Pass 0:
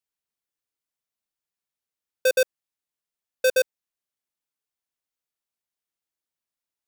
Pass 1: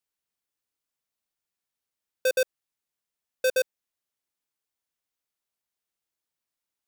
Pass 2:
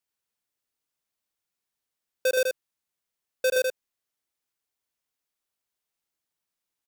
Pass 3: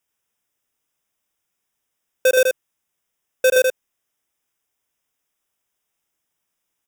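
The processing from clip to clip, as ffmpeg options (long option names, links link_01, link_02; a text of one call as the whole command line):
ffmpeg -i in.wav -af "alimiter=limit=-22.5dB:level=0:latency=1,volume=1.5dB" out.wav
ffmpeg -i in.wav -af "aecho=1:1:81:0.631" out.wav
ffmpeg -i in.wav -af "asuperstop=centerf=4300:order=4:qfactor=3.6,volume=8.5dB" out.wav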